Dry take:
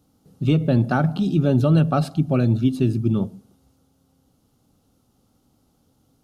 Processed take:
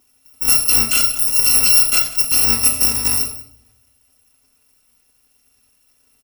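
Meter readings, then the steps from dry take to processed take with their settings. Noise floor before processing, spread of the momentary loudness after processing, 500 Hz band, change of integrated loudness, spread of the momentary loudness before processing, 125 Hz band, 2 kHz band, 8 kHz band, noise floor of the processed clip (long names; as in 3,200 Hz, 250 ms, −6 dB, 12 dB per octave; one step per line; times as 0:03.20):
−65 dBFS, 6 LU, −12.0 dB, +8.0 dB, 6 LU, −17.5 dB, +9.5 dB, can't be measured, −61 dBFS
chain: samples in bit-reversed order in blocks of 256 samples
low-shelf EQ 150 Hz −11.5 dB
on a send: single-tap delay 181 ms −18.5 dB
on the sum: rectangular room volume 860 cubic metres, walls furnished, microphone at 1.9 metres
level +3 dB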